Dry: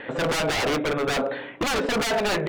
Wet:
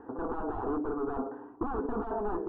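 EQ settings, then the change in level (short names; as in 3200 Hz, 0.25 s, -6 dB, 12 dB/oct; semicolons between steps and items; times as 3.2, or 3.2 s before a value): LPF 1200 Hz 24 dB/oct; low shelf 130 Hz +6 dB; fixed phaser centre 570 Hz, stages 6; -5.0 dB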